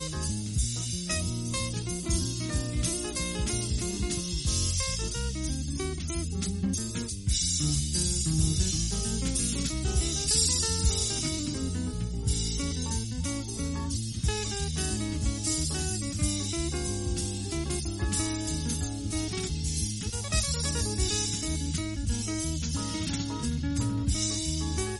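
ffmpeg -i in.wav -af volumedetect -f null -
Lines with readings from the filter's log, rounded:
mean_volume: -29.5 dB
max_volume: -12.1 dB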